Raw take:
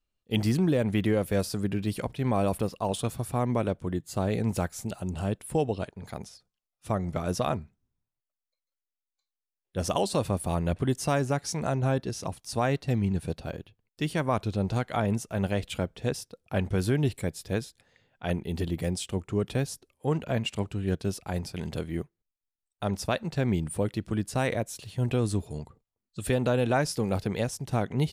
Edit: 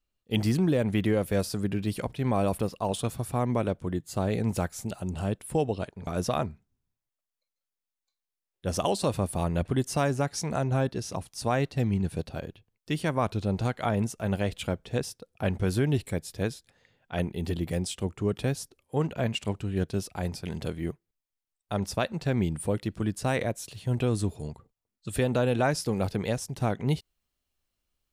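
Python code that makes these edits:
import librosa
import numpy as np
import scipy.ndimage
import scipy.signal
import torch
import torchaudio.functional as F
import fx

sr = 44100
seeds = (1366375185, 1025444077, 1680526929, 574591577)

y = fx.edit(x, sr, fx.cut(start_s=6.07, length_s=1.11), tone=tone)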